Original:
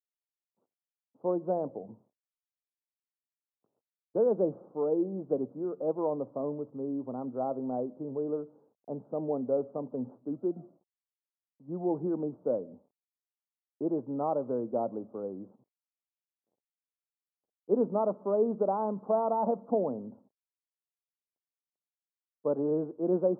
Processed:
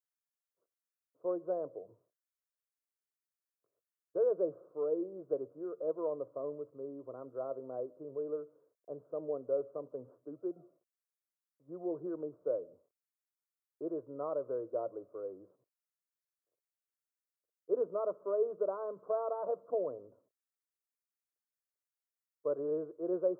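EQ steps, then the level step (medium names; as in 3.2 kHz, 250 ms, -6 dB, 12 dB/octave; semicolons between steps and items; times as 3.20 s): bass shelf 430 Hz -8 dB; static phaser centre 830 Hz, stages 6; 0.0 dB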